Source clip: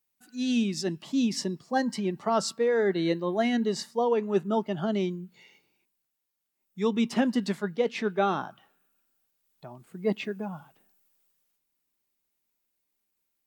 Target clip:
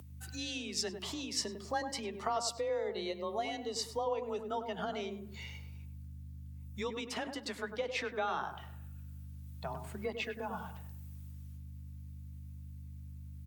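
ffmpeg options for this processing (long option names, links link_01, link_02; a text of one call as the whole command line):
ffmpeg -i in.wav -filter_complex "[0:a]aeval=exprs='val(0)+0.00224*(sin(2*PI*50*n/s)+sin(2*PI*2*50*n/s)/2+sin(2*PI*3*50*n/s)/3+sin(2*PI*4*50*n/s)/4+sin(2*PI*5*50*n/s)/5)':channel_layout=same,acompressor=threshold=-37dB:ratio=6,asettb=1/sr,asplit=3[link_01][link_02][link_03];[link_01]atrim=end=2.324[link_04];[link_02]atrim=start=2.32:end=4.39,asetpts=PTS-STARTPTS,afade=type=in:duration=0.004:curve=qsin,afade=type=out:start_time=2.066:duration=0.004:curve=qsin,equalizer=frequency=1600:width=3.5:gain=-13.5[link_05];[link_03]atrim=start=4.386[link_06];[link_04][link_05]acrossfade=duration=0.004:curve1=hsin:curve2=qsin[link_07];[link_07][link_06]acrossfade=duration=0.004:curve1=qsin:curve2=hsin,asplit=2[link_08][link_09];[link_09]adelay=100,lowpass=frequency=990:poles=1,volume=-6dB,asplit=2[link_10][link_11];[link_11]adelay=100,lowpass=frequency=990:poles=1,volume=0.38,asplit=2[link_12][link_13];[link_13]adelay=100,lowpass=frequency=990:poles=1,volume=0.38,asplit=2[link_14][link_15];[link_15]adelay=100,lowpass=frequency=990:poles=1,volume=0.38,asplit=2[link_16][link_17];[link_17]adelay=100,lowpass=frequency=990:poles=1,volume=0.38[link_18];[link_08][link_10][link_12][link_14][link_16][link_18]amix=inputs=6:normalize=0,afreqshift=27,highpass=79,equalizer=frequency=260:width=0.99:gain=-14.5,acompressor=mode=upward:threshold=-58dB:ratio=2.5,volume=8dB" out.wav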